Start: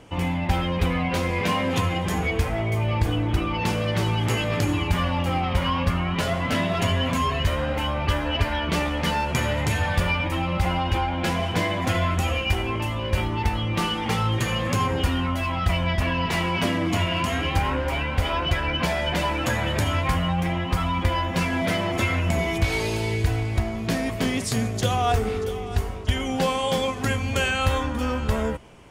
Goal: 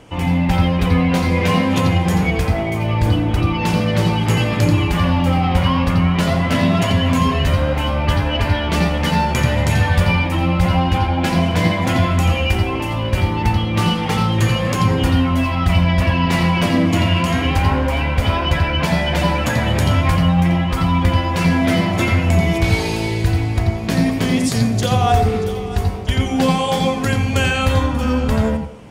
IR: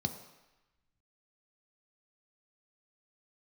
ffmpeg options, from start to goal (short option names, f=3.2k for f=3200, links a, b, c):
-filter_complex "[0:a]asplit=2[a][b];[1:a]atrim=start_sample=2205,adelay=86[c];[b][c]afir=irnorm=-1:irlink=0,volume=-9dB[d];[a][d]amix=inputs=2:normalize=0,volume=4dB"